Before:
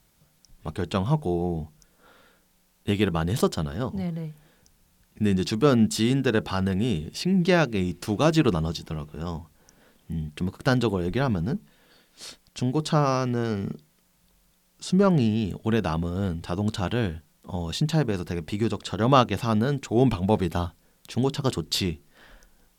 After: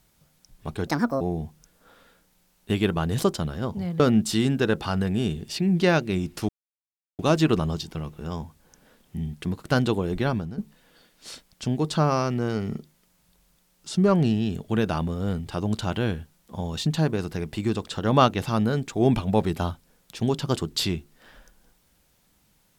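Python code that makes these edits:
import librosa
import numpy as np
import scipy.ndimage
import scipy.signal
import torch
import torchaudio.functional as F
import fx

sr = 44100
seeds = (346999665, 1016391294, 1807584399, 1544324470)

y = fx.edit(x, sr, fx.speed_span(start_s=0.87, length_s=0.52, speed=1.54),
    fx.cut(start_s=4.18, length_s=1.47),
    fx.insert_silence(at_s=8.14, length_s=0.7),
    fx.fade_out_to(start_s=11.23, length_s=0.3, floor_db=-13.5), tone=tone)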